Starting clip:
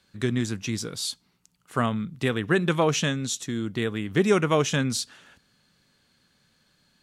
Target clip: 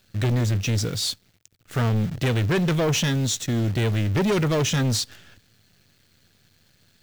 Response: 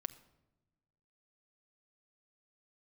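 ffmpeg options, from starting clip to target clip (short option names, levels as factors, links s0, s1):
-af "acrusher=bits=8:dc=4:mix=0:aa=0.000001,equalizer=f=100:t=o:w=0.67:g=12,equalizer=f=1000:t=o:w=0.67:g=-8,equalizer=f=10000:t=o:w=0.67:g=-6,asoftclip=type=tanh:threshold=0.0501,volume=2.37"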